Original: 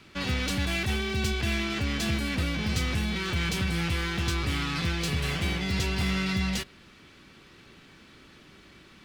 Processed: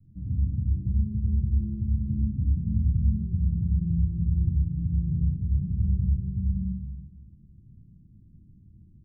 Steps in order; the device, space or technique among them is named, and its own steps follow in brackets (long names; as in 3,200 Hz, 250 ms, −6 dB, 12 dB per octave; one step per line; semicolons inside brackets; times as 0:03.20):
club heard from the street (brickwall limiter −20 dBFS, peak gain reduction 6 dB; low-pass filter 160 Hz 24 dB per octave; convolution reverb RT60 1.5 s, pre-delay 3 ms, DRR −3.5 dB)
level +3.5 dB